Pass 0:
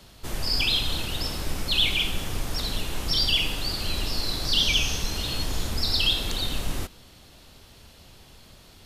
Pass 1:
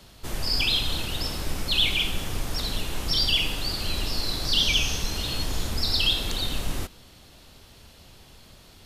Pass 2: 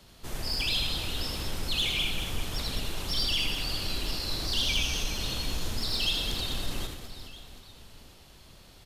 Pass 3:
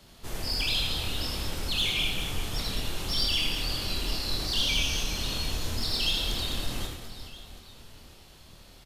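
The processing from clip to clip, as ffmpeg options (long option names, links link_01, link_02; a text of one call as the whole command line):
ffmpeg -i in.wav -af anull out.wav
ffmpeg -i in.wav -af "asoftclip=type=tanh:threshold=-17.5dB,aecho=1:1:80|208|412.8|740.5|1265:0.631|0.398|0.251|0.158|0.1,volume=-5dB" out.wav
ffmpeg -i in.wav -filter_complex "[0:a]asplit=2[link_01][link_02];[link_02]adelay=26,volume=-5dB[link_03];[link_01][link_03]amix=inputs=2:normalize=0" out.wav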